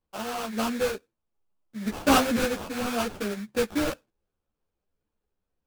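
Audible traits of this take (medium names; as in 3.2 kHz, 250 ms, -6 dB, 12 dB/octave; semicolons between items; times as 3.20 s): aliases and images of a low sample rate 2 kHz, jitter 20%; a shimmering, thickened sound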